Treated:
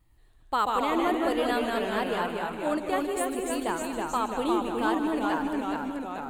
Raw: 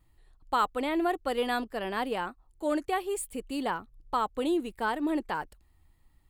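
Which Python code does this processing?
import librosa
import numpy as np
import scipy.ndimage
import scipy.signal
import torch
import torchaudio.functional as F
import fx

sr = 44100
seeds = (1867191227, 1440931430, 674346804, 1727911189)

y = fx.echo_pitch(x, sr, ms=106, semitones=-1, count=3, db_per_echo=-3.0)
y = fx.echo_heads(y, sr, ms=77, heads='second and third', feedback_pct=42, wet_db=-12)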